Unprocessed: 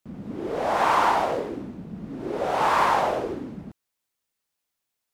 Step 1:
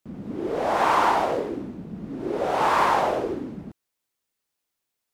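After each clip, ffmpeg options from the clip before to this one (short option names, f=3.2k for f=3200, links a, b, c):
-af "equalizer=f=350:w=1.5:g=3"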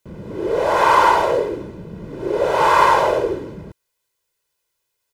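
-af "aecho=1:1:2:0.73,volume=4.5dB"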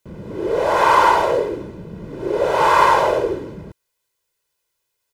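-af anull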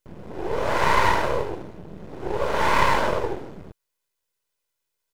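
-af "aeval=exprs='max(val(0),0)':c=same,volume=-2dB"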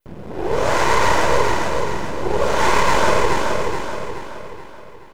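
-af "alimiter=limit=-11dB:level=0:latency=1:release=140,aecho=1:1:426|852|1278|1704|2130|2556:0.631|0.303|0.145|0.0698|0.0335|0.0161,adynamicequalizer=threshold=0.00224:dfrequency=6800:dqfactor=1.4:tfrequency=6800:tqfactor=1.4:attack=5:release=100:ratio=0.375:range=4:mode=boostabove:tftype=bell,volume=6dB"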